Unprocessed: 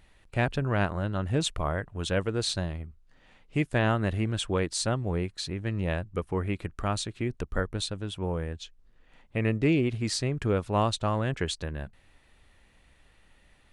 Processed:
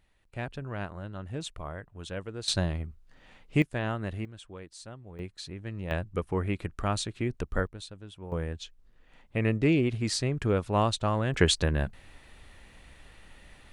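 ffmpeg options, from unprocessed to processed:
-af "asetnsamples=n=441:p=0,asendcmd='2.48 volume volume 3dB;3.62 volume volume -6.5dB;4.25 volume volume -17dB;5.19 volume volume -7dB;5.91 volume volume 0dB;7.67 volume volume -11dB;8.32 volume volume 0dB;11.34 volume volume 8dB',volume=0.335"

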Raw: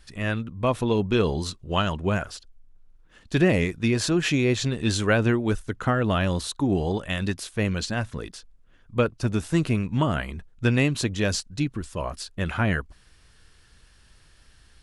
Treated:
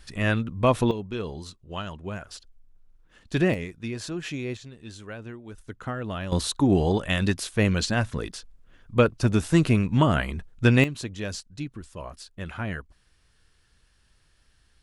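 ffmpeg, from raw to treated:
-af "asetnsamples=n=441:p=0,asendcmd='0.91 volume volume -10dB;2.31 volume volume -2.5dB;3.54 volume volume -10dB;4.57 volume volume -18dB;5.58 volume volume -9dB;6.32 volume volume 3dB;10.84 volume volume -8dB',volume=1.41"

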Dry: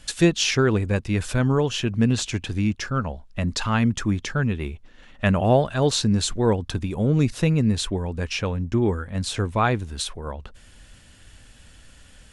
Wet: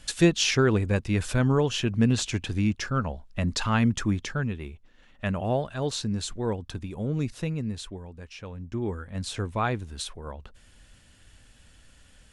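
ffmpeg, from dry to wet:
-af "volume=2.82,afade=t=out:st=4.02:d=0.62:silence=0.473151,afade=t=out:st=7.23:d=1.1:silence=0.375837,afade=t=in:st=8.33:d=0.85:silence=0.281838"

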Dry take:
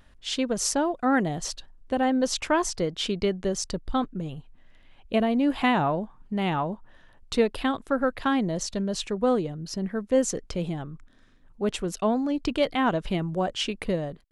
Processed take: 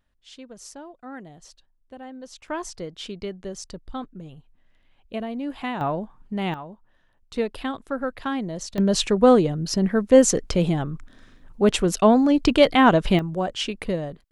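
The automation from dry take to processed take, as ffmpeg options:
-af "asetnsamples=n=441:p=0,asendcmd='2.48 volume volume -7dB;5.81 volume volume 0dB;6.54 volume volume -10dB;7.36 volume volume -3dB;8.78 volume volume 8.5dB;13.19 volume volume 1dB',volume=0.158"

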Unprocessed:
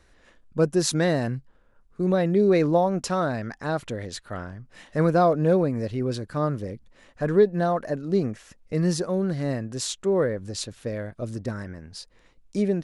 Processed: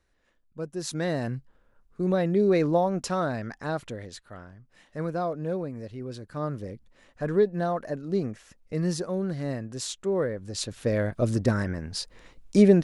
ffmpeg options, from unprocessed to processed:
-af "volume=5.31,afade=t=in:st=0.71:d=0.65:silence=0.281838,afade=t=out:st=3.62:d=0.72:silence=0.421697,afade=t=in:st=6.09:d=0.58:silence=0.501187,afade=t=in:st=10.46:d=0.62:silence=0.281838"

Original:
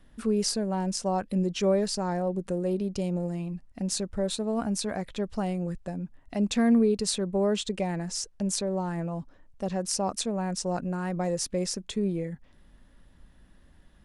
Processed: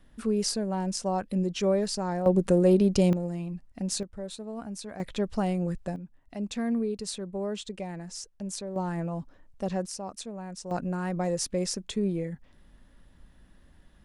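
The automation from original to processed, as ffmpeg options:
-af "asetnsamples=n=441:p=0,asendcmd='2.26 volume volume 8dB;3.13 volume volume -1dB;4.03 volume volume -9dB;5 volume volume 2dB;5.96 volume volume -7dB;8.76 volume volume 0dB;9.86 volume volume -9dB;10.71 volume volume 0dB',volume=0.891"

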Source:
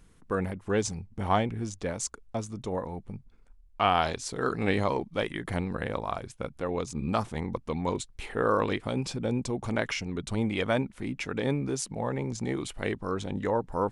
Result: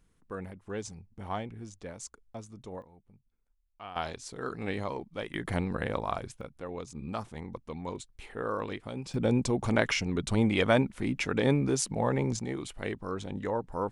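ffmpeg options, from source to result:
-af "asetnsamples=n=441:p=0,asendcmd='2.82 volume volume -20dB;3.96 volume volume -7.5dB;5.34 volume volume 0dB;6.41 volume volume -8dB;9.14 volume volume 3dB;12.39 volume volume -4dB',volume=0.316"

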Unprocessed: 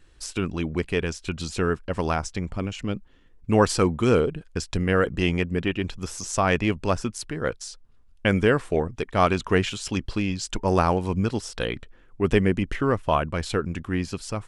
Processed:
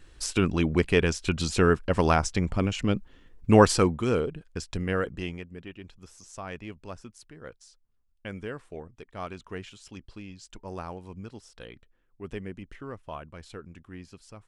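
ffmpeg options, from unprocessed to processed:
-af "volume=1.41,afade=t=out:st=3.52:d=0.52:silence=0.354813,afade=t=out:st=4.93:d=0.52:silence=0.281838"

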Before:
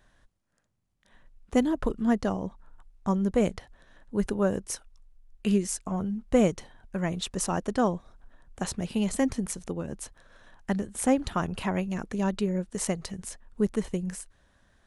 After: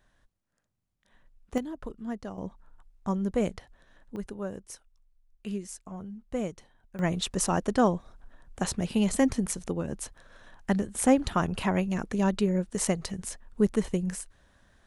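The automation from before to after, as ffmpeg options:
-af "asetnsamples=n=441:p=0,asendcmd='1.58 volume volume -11dB;2.38 volume volume -3dB;4.16 volume volume -10dB;6.99 volume volume 2dB',volume=0.596"

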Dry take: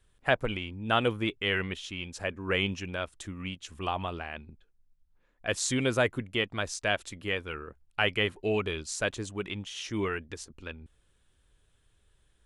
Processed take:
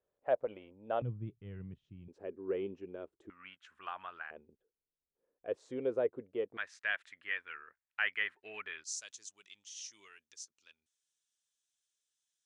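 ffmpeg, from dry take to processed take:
-af "asetnsamples=n=441:p=0,asendcmd='1.02 bandpass f 130;2.08 bandpass f 390;3.3 bandpass f 1500;4.31 bandpass f 460;6.57 bandpass f 1800;8.84 bandpass f 6100',bandpass=f=560:t=q:w=3.6:csg=0"

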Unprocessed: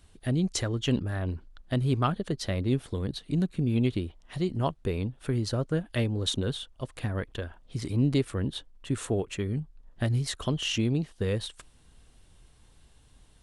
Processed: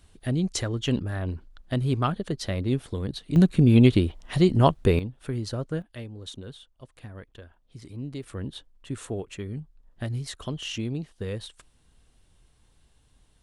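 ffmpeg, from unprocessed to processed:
-af "asetnsamples=n=441:p=0,asendcmd='3.36 volume volume 9.5dB;4.99 volume volume -2dB;5.82 volume volume -11dB;8.23 volume volume -4dB',volume=1.12"

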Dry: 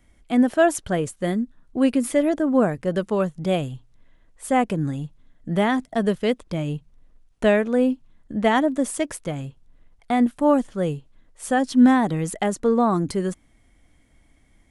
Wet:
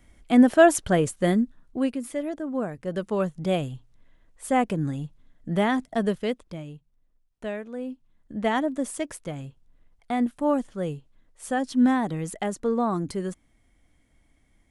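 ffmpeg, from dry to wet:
-af "volume=8.41,afade=t=out:st=1.39:d=0.56:silence=0.251189,afade=t=in:st=2.69:d=0.59:silence=0.421697,afade=t=out:st=5.98:d=0.75:silence=0.251189,afade=t=in:st=7.84:d=0.61:silence=0.354813"

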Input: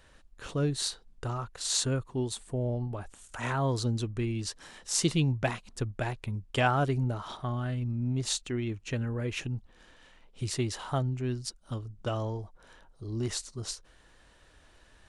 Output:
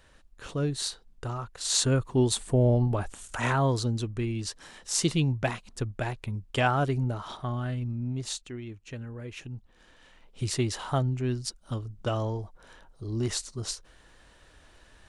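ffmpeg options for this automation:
-af "volume=8.91,afade=t=in:st=1.58:d=0.74:silence=0.354813,afade=t=out:st=2.99:d=0.88:silence=0.398107,afade=t=out:st=7.7:d=0.89:silence=0.398107,afade=t=in:st=9.41:d=1.02:silence=0.316228"

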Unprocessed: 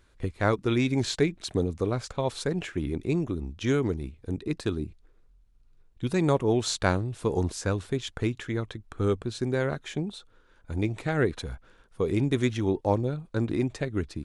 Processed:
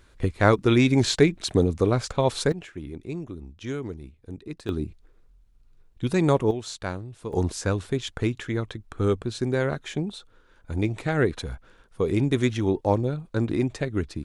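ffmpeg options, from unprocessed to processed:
-af "asetnsamples=n=441:p=0,asendcmd='2.52 volume volume -6.5dB;4.69 volume volume 3dB;6.51 volume volume -7dB;7.33 volume volume 2.5dB',volume=2"

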